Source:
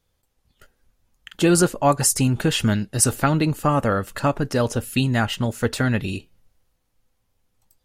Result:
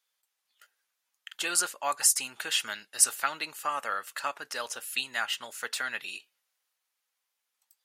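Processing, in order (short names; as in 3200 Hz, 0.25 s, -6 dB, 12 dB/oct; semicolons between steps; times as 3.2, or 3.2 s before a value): HPF 1300 Hz 12 dB/oct; gain -3 dB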